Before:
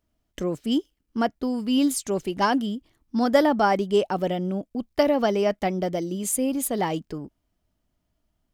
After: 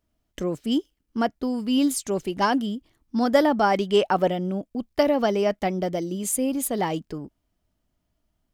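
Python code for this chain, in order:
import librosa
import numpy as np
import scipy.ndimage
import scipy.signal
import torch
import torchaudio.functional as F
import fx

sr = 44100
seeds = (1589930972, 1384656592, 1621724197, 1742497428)

y = fx.peak_eq(x, sr, hz=fx.line((3.73, 3600.0), (4.28, 910.0)), db=7.5, octaves=2.3, at=(3.73, 4.28), fade=0.02)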